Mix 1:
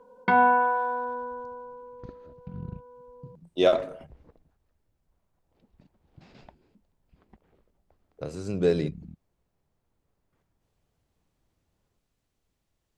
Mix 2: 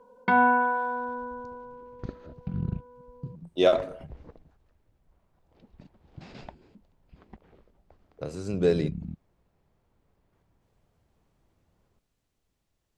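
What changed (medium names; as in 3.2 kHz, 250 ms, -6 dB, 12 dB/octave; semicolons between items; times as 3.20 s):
second sound +7.5 dB; reverb: off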